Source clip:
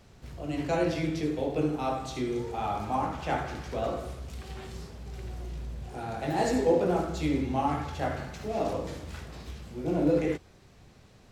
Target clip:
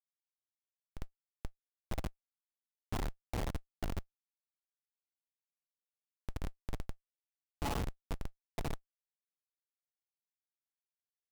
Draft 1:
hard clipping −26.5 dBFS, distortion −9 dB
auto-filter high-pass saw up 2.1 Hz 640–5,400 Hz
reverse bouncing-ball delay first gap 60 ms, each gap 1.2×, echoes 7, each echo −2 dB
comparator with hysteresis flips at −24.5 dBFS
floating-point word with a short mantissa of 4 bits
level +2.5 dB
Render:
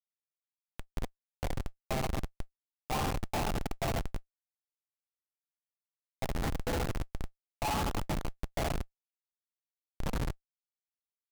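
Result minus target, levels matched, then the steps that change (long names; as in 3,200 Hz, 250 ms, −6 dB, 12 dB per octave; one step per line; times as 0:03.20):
hard clipping: distortion −5 dB
change: hard clipping −33 dBFS, distortion −5 dB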